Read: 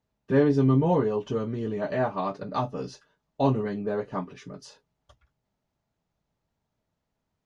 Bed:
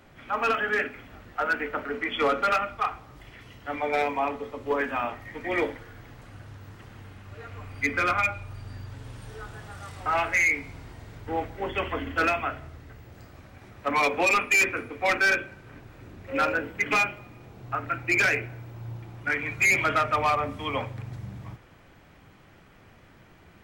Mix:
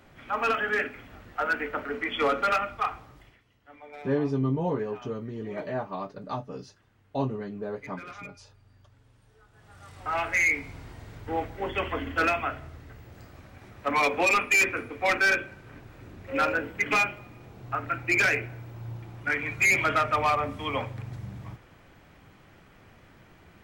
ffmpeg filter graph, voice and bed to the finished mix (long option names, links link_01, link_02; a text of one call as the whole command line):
ffmpeg -i stem1.wav -i stem2.wav -filter_complex "[0:a]adelay=3750,volume=-5.5dB[link_01];[1:a]volume=17.5dB,afade=type=out:start_time=3.01:duration=0.41:silence=0.125893,afade=type=in:start_time=9.51:duration=0.98:silence=0.11885[link_02];[link_01][link_02]amix=inputs=2:normalize=0" out.wav